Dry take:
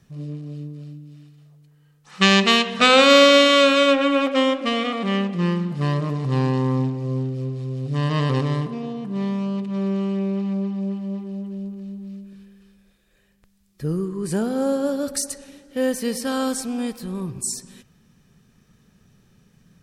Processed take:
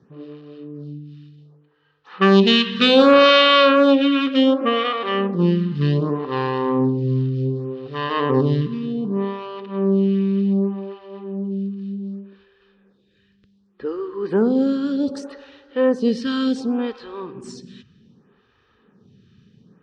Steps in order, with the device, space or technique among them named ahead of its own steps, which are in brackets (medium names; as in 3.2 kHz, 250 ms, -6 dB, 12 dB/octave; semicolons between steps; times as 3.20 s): vibe pedal into a guitar amplifier (lamp-driven phase shifter 0.66 Hz; valve stage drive 11 dB, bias 0.3; cabinet simulation 94–4000 Hz, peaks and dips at 160 Hz -5 dB, 420 Hz +4 dB, 650 Hz -10 dB, 2.2 kHz -8 dB); trim +8.5 dB